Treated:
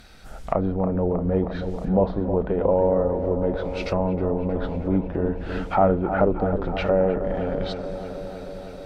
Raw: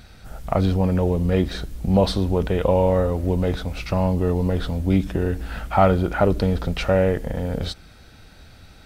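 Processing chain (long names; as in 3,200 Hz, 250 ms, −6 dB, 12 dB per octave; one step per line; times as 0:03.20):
treble cut that deepens with the level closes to 910 Hz, closed at −17 dBFS
parametric band 91 Hz −9.5 dB 1.7 octaves
on a send: delay with a low-pass on its return 315 ms, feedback 76%, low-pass 1,600 Hz, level −9.5 dB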